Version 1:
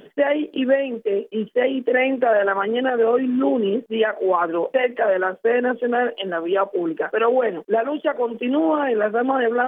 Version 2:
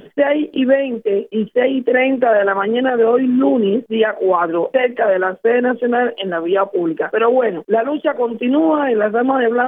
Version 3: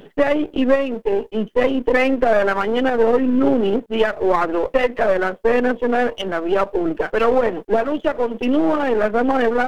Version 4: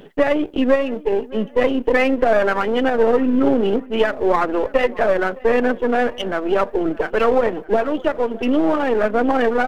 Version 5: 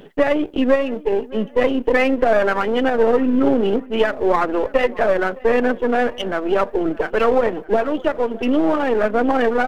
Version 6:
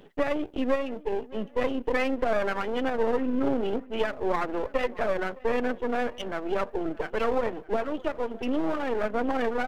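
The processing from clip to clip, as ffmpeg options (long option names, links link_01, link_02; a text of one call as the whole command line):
ffmpeg -i in.wav -af "lowshelf=frequency=150:gain=10,volume=3.5dB" out.wav
ffmpeg -i in.wav -af "aeval=exprs='if(lt(val(0),0),0.447*val(0),val(0))':channel_layout=same" out.wav
ffmpeg -i in.wav -filter_complex "[0:a]asplit=2[link_01][link_02];[link_02]adelay=613,lowpass=frequency=2400:poles=1,volume=-21dB,asplit=2[link_03][link_04];[link_04]adelay=613,lowpass=frequency=2400:poles=1,volume=0.43,asplit=2[link_05][link_06];[link_06]adelay=613,lowpass=frequency=2400:poles=1,volume=0.43[link_07];[link_01][link_03][link_05][link_07]amix=inputs=4:normalize=0" out.wav
ffmpeg -i in.wav -af anull out.wav
ffmpeg -i in.wav -af "aeval=exprs='if(lt(val(0),0),0.447*val(0),val(0))':channel_layout=same,volume=-9dB" out.wav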